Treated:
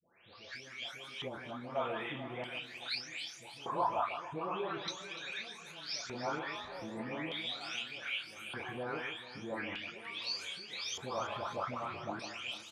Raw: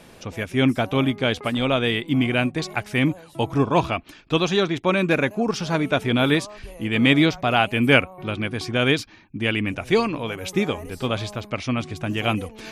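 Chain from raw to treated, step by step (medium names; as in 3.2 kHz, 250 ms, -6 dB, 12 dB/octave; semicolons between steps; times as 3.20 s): delay that grows with frequency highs late, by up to 560 ms; peaking EQ 97 Hz +12.5 dB 0.74 oct; doubling 32 ms -7 dB; compression, threshold -27 dBFS, peak gain reduction 15 dB; LFO band-pass square 0.41 Hz 930–4800 Hz; on a send: echo whose repeats swap between lows and highs 147 ms, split 1.9 kHz, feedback 66%, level -8.5 dB; on the sum: time-frequency box 1.28–1.76 s, 380–3600 Hz -9 dB; trim +4.5 dB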